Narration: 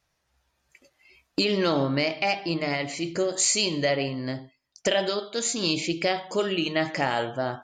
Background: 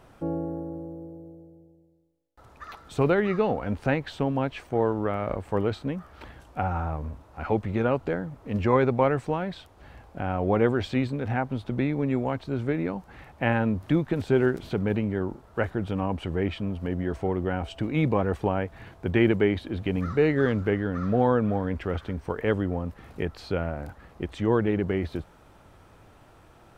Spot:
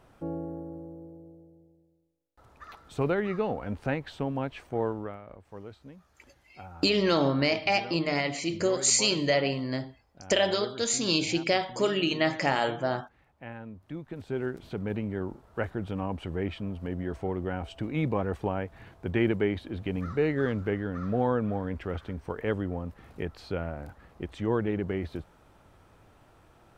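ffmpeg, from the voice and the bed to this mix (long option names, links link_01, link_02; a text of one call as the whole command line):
ffmpeg -i stem1.wav -i stem2.wav -filter_complex "[0:a]adelay=5450,volume=-0.5dB[link_01];[1:a]volume=8.5dB,afade=type=out:start_time=4.87:duration=0.35:silence=0.223872,afade=type=in:start_time=13.84:duration=1.38:silence=0.211349[link_02];[link_01][link_02]amix=inputs=2:normalize=0" out.wav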